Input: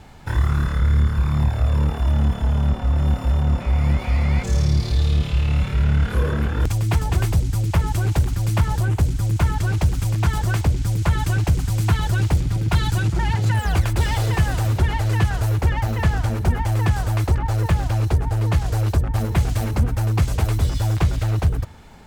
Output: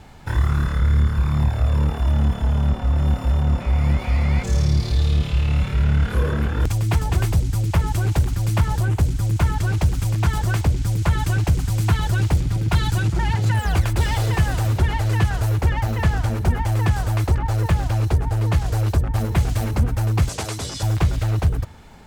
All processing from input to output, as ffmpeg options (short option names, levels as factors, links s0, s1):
-filter_complex "[0:a]asettb=1/sr,asplit=3[s0][s1][s2];[s0]atrim=end=20.294[s3];[s1]atrim=start=20.29:end=20.83,asetpts=PTS-STARTPTS,afade=t=in:d=0.004:c=qsin,afade=t=out:st=0.536:d=0.004:c=qsin,highpass=120,lowpass=7400,bass=f=250:g=-6,treble=f=4000:g=11[s4];[s2]atrim=start=20.826[s5];[s3][s4]acrossfade=d=0.004:c1=hsin:c2=qsin[s6];[s6][s5]acrossfade=d=0.004:c1=qsin:c2=hsin"